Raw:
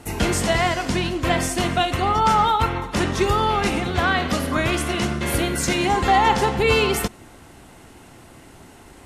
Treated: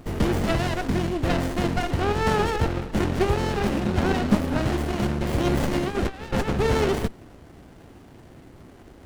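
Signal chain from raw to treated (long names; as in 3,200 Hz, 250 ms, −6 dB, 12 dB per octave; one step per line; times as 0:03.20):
0:03.85–0:04.35: parametric band 210 Hz +12.5 dB 0.25 octaves
0:05.41–0:06.53: compressor whose output falls as the input rises −22 dBFS, ratio −0.5
windowed peak hold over 33 samples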